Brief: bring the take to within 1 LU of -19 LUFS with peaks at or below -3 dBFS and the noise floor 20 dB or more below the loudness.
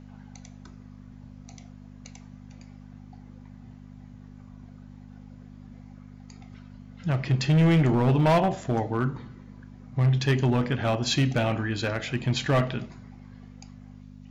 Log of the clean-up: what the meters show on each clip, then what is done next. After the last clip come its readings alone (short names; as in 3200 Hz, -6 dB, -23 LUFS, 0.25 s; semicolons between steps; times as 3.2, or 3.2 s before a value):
clipped 1.7%; flat tops at -16.5 dBFS; hum 50 Hz; harmonics up to 250 Hz; hum level -44 dBFS; loudness -24.5 LUFS; peak -16.5 dBFS; loudness target -19.0 LUFS
-> clip repair -16.5 dBFS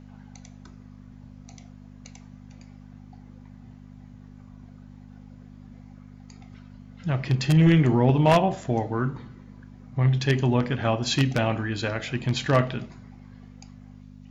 clipped 0.0%; hum 50 Hz; harmonics up to 250 Hz; hum level -43 dBFS
-> de-hum 50 Hz, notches 5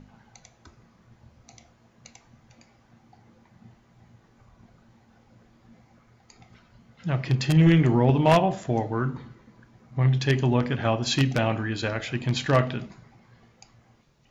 hum none; loudness -23.5 LUFS; peak -6.0 dBFS; loudness target -19.0 LUFS
-> gain +4.5 dB; limiter -3 dBFS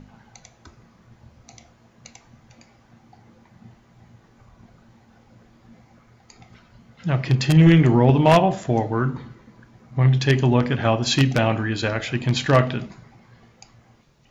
loudness -19.0 LUFS; peak -3.0 dBFS; noise floor -56 dBFS